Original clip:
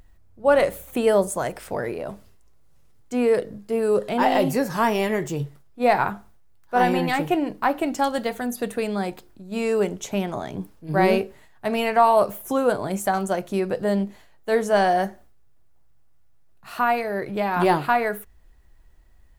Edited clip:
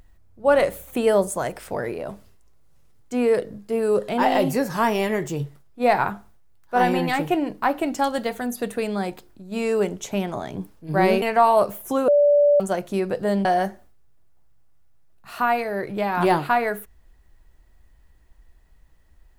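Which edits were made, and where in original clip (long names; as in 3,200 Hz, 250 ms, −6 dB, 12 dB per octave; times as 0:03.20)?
0:11.22–0:11.82: remove
0:12.68–0:13.20: beep over 581 Hz −12.5 dBFS
0:14.05–0:14.84: remove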